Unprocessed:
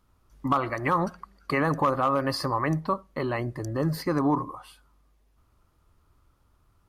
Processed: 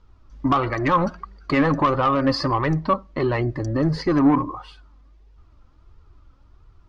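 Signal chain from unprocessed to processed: low-pass 5.8 kHz 24 dB/octave; bass shelf 200 Hz +7.5 dB; in parallel at -9 dB: sine folder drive 5 dB, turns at -13 dBFS; on the sum: flange 1.5 Hz, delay 2 ms, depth 2 ms, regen +39%; trim +3.5 dB

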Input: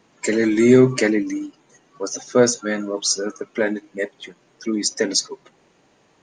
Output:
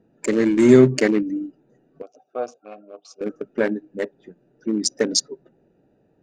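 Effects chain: local Wiener filter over 41 samples; 2.02–3.21 s: vowel filter a; trim +1 dB

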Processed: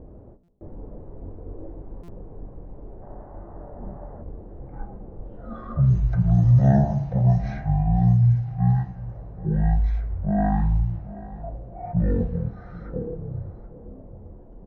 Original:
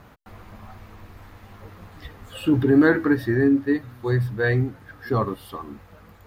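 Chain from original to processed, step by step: level-controlled noise filter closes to 1.2 kHz, open at -14 dBFS; flange 0.58 Hz, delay 7.2 ms, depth 1.6 ms, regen -87%; dynamic bell 1.1 kHz, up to -6 dB, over -40 dBFS, Q 0.74; in parallel at +3 dB: compression, threshold -36 dBFS, peak gain reduction 17.5 dB; on the sum: delay 334 ms -17.5 dB; on a send at -23.5 dB: reverberation RT60 3.1 s, pre-delay 6 ms; on the sum: time-frequency box 1.30–1.80 s, 1.3–4.9 kHz +9 dB; speed mistake 78 rpm record played at 33 rpm; buffer glitch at 0.43/2.03 s, samples 256, times 8; trim +3 dB

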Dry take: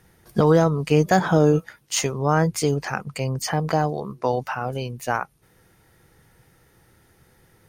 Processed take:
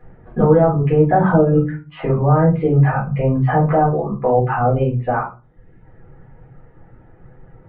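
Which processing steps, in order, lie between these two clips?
reverb removal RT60 0.83 s; peak limiter -17 dBFS, peak gain reduction 11 dB; Gaussian low-pass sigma 5 samples; reverberation RT60 0.30 s, pre-delay 4 ms, DRR -6 dB; trim +3.5 dB

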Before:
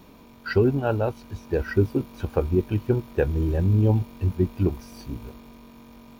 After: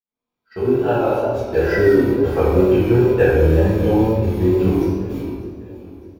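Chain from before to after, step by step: fade-in on the opening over 1.38 s; gate -34 dBFS, range -27 dB; bass shelf 240 Hz -12 dB; feedback delay 602 ms, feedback 52%, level -19 dB; reverberation RT60 2.1 s, pre-delay 4 ms, DRR -12 dB; wow and flutter 46 cents; doubling 25 ms -11 dB

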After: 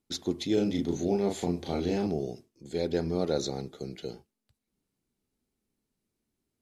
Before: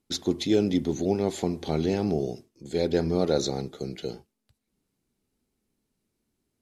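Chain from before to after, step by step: 0.54–2.07 s: doubling 35 ms -2.5 dB; trim -4.5 dB

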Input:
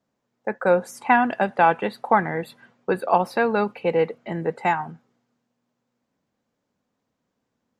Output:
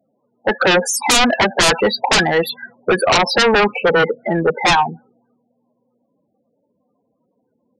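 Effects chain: loudest bins only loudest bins 16; RIAA curve recording; sine folder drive 17 dB, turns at -6 dBFS; trim -3 dB

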